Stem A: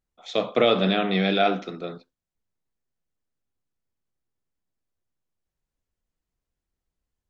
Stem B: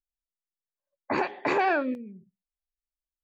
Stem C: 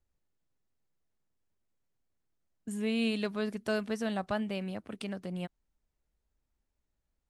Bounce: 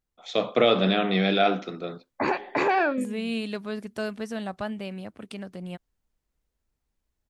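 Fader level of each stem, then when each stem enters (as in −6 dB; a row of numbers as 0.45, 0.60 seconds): −0.5, +1.5, +0.5 decibels; 0.00, 1.10, 0.30 seconds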